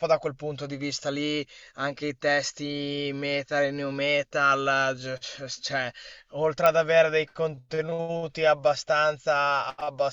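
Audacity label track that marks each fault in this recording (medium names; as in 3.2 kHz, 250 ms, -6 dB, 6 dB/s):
6.660000	6.660000	pop -8 dBFS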